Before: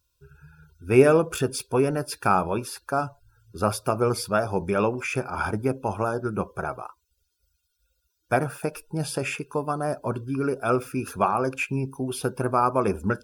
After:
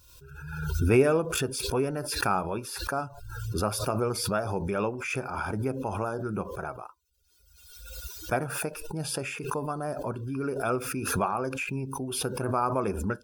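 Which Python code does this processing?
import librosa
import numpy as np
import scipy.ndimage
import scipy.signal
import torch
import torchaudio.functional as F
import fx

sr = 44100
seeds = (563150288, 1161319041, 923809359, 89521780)

y = fx.pre_swell(x, sr, db_per_s=42.0)
y = F.gain(torch.from_numpy(y), -6.0).numpy()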